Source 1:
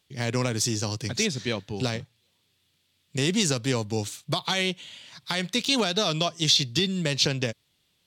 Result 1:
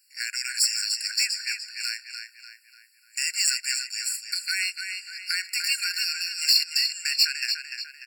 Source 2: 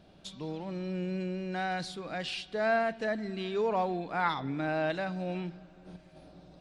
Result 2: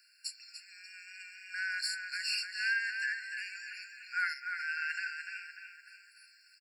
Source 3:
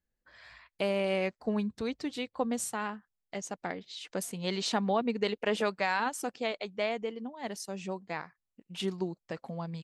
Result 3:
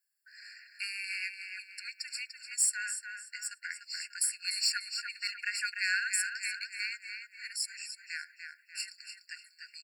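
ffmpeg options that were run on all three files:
-filter_complex "[0:a]equalizer=f=1000:t=o:w=0.73:g=14.5,asplit=2[s0][s1];[s1]adelay=295,lowpass=f=4000:p=1,volume=0.531,asplit=2[s2][s3];[s3]adelay=295,lowpass=f=4000:p=1,volume=0.5,asplit=2[s4][s5];[s5]adelay=295,lowpass=f=4000:p=1,volume=0.5,asplit=2[s6][s7];[s7]adelay=295,lowpass=f=4000:p=1,volume=0.5,asplit=2[s8][s9];[s9]adelay=295,lowpass=f=4000:p=1,volume=0.5,asplit=2[s10][s11];[s11]adelay=295,lowpass=f=4000:p=1,volume=0.5[s12];[s2][s4][s6][s8][s10][s12]amix=inputs=6:normalize=0[s13];[s0][s13]amix=inputs=2:normalize=0,aexciter=amount=1.6:drive=9.9:freq=3200,afftfilt=real='re*eq(mod(floor(b*sr/1024/1400),2),1)':imag='im*eq(mod(floor(b*sr/1024/1400),2),1)':win_size=1024:overlap=0.75"

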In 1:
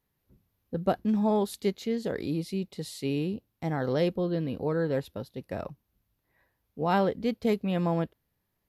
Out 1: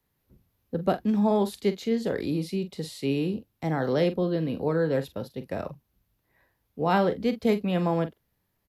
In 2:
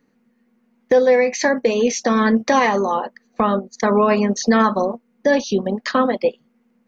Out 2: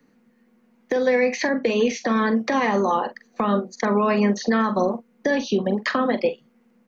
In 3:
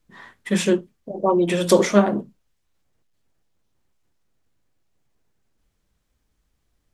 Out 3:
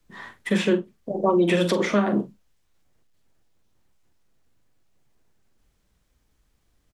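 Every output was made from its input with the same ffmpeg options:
-filter_complex "[0:a]acrossover=split=130|400|1000|3900[s0][s1][s2][s3][s4];[s0]acompressor=threshold=0.00398:ratio=4[s5];[s1]acompressor=threshold=0.1:ratio=4[s6];[s2]acompressor=threshold=0.0447:ratio=4[s7];[s3]acompressor=threshold=0.0631:ratio=4[s8];[s4]acompressor=threshold=0.00447:ratio=4[s9];[s5][s6][s7][s8][s9]amix=inputs=5:normalize=0,alimiter=limit=0.2:level=0:latency=1:release=203,asplit=2[s10][s11];[s11]adelay=44,volume=0.251[s12];[s10][s12]amix=inputs=2:normalize=0,volume=1.41"

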